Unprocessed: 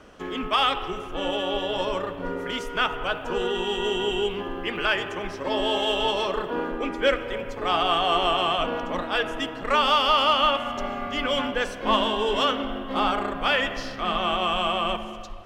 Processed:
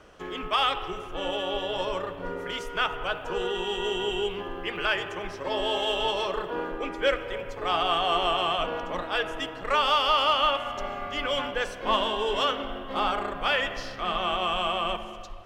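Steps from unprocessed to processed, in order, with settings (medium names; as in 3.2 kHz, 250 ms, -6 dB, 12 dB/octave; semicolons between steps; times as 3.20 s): peaking EQ 240 Hz -10 dB 0.38 oct; trim -2.5 dB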